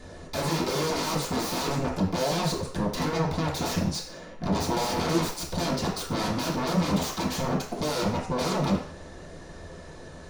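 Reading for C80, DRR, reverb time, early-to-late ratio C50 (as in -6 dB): 9.5 dB, -8.0 dB, 0.55 s, 5.5 dB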